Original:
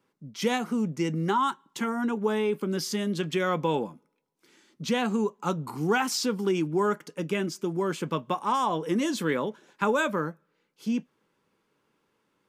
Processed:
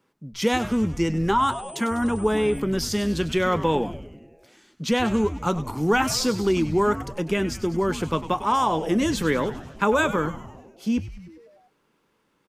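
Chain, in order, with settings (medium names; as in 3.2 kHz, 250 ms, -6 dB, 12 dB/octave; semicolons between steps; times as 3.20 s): frequency-shifting echo 99 ms, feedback 62%, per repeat -140 Hz, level -13 dB; 1.40–2.58 s: whistle 8.1 kHz -46 dBFS; trim +4 dB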